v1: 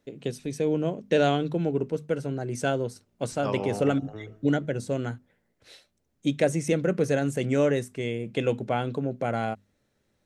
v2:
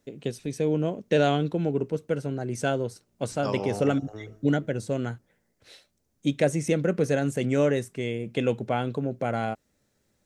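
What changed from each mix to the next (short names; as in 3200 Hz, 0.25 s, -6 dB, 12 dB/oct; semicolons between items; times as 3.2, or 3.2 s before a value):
first voice: remove notches 50/100/150/200/250 Hz; second voice: add resonant high shelf 4000 Hz +8.5 dB, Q 1.5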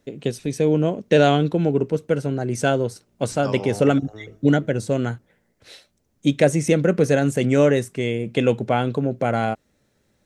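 first voice +6.5 dB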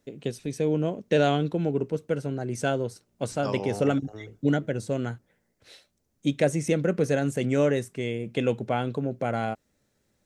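first voice -6.5 dB; reverb: off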